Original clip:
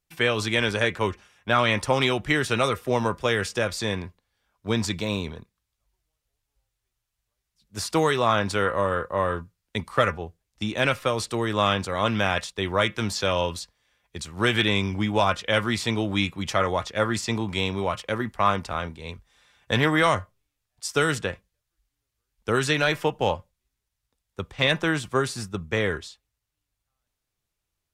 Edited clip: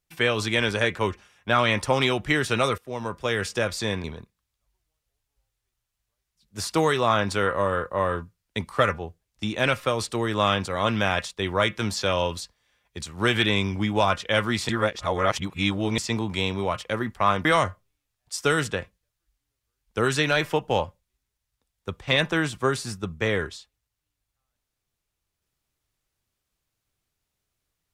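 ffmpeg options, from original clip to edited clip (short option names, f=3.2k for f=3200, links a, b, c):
-filter_complex "[0:a]asplit=6[a][b][c][d][e][f];[a]atrim=end=2.78,asetpts=PTS-STARTPTS,afade=t=out:st=2.776:d=0.004:c=hsin:silence=0.158489[g];[b]atrim=start=2.78:end=4.042,asetpts=PTS-STARTPTS,afade=t=in:d=0.72:silence=0.158489[h];[c]atrim=start=5.228:end=15.882[i];[d]atrim=start=15.878:end=17.172,asetpts=PTS-STARTPTS,areverse[j];[e]atrim=start=17.168:end=18.642[k];[f]atrim=start=19.958[l];[g][h]concat=n=2:v=0:a=1[m];[m][i]acrossfade=d=0.004:c1=hsin:c2=hsin[n];[n][j]acrossfade=d=0.004:c1=hsin:c2=hsin[o];[o][k]acrossfade=d=0.004:c1=hsin:c2=hsin[p];[p][l]acrossfade=d=0.004:c1=hsin:c2=hsin"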